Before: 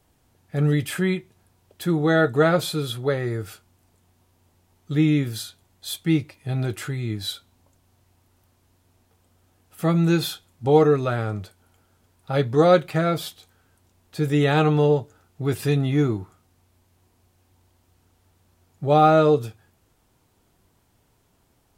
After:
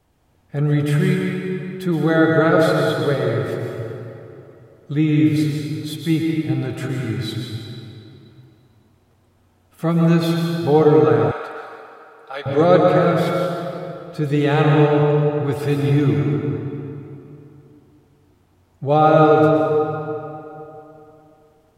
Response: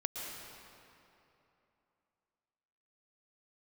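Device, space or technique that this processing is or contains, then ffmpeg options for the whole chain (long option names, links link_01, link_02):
swimming-pool hall: -filter_complex "[1:a]atrim=start_sample=2205[link_01];[0:a][link_01]afir=irnorm=-1:irlink=0,highshelf=frequency=4200:gain=-8,asettb=1/sr,asplit=3[link_02][link_03][link_04];[link_02]atrim=end=11.314[link_05];[link_03]atrim=start=11.31:end=12.46,asetpts=PTS-STARTPTS,afade=type=in:duration=0.004:curve=qsin,afade=type=out:start_time=1.146:duration=0.004:curve=qsin,highpass=870[link_06];[link_04]atrim=start=12.456[link_07];[link_05][link_06]acrossfade=duration=0.004:curve1=hsin:curve2=qsin[link_08];[link_08][link_07]acrossfade=duration=0.004:curve1=qsin:curve2=hsin,volume=2.5dB"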